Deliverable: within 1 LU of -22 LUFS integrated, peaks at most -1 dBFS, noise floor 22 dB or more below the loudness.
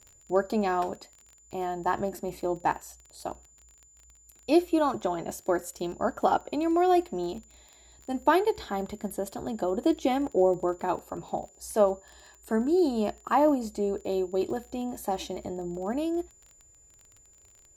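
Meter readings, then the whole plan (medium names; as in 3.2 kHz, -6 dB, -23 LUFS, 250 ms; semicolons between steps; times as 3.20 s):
tick rate 25 per s; steady tone 7.1 kHz; tone level -56 dBFS; loudness -28.5 LUFS; peak level -9.5 dBFS; loudness target -22.0 LUFS
-> de-click; band-stop 7.1 kHz, Q 30; trim +6.5 dB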